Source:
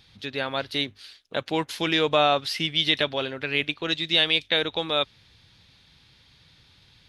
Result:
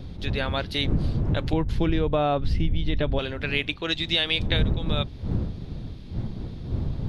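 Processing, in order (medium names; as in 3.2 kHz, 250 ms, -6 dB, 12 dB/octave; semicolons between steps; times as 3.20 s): wind noise 130 Hz -22 dBFS; 1.53–3.19 s: tilt EQ -4.5 dB/octave; compression 16:1, threshold -18 dBFS, peak gain reduction 15.5 dB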